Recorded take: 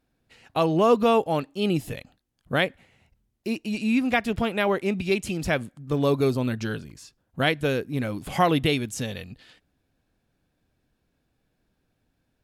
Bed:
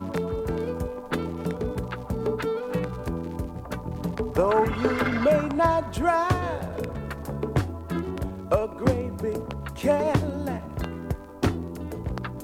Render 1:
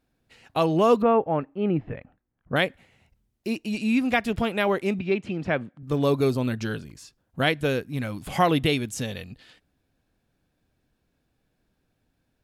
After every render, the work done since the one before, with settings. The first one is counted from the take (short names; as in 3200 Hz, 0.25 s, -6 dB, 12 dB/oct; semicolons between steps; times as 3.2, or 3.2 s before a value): 1.02–2.56 LPF 2000 Hz 24 dB/oct; 4.99–5.83 BPF 120–2300 Hz; 7.79–8.28 bell 400 Hz -6.5 dB 1.1 oct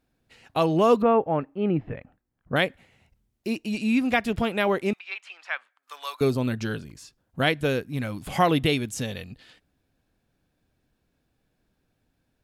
4.93–6.21 HPF 1000 Hz 24 dB/oct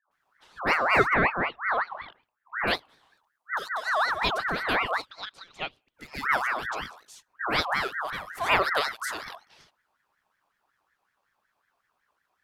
dispersion highs, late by 0.113 s, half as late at 310 Hz; ring modulator with a swept carrier 1300 Hz, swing 35%, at 5.4 Hz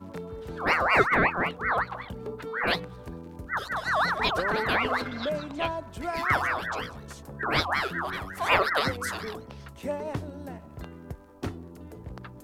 add bed -10 dB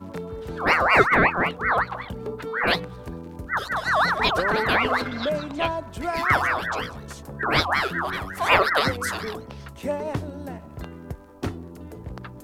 gain +4.5 dB